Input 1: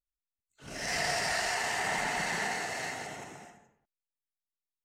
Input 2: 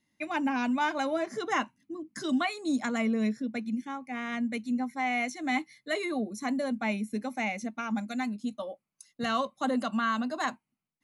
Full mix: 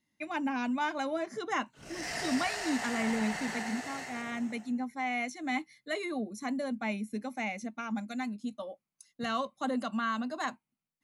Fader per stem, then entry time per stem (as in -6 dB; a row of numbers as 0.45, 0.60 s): -5.5, -3.5 dB; 1.15, 0.00 s